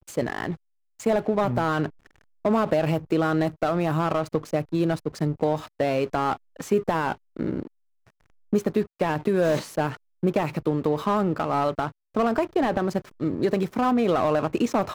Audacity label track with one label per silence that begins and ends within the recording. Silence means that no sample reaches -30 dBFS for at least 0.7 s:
7.650000	8.530000	silence